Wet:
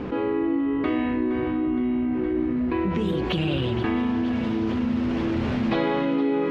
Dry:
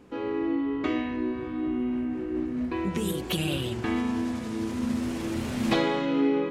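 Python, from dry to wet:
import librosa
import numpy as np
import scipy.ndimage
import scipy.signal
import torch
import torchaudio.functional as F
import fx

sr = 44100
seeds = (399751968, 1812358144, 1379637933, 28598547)

y = fx.air_absorb(x, sr, metres=250.0)
y = fx.echo_thinned(y, sr, ms=466, feedback_pct=74, hz=420.0, wet_db=-13.0)
y = fx.env_flatten(y, sr, amount_pct=70)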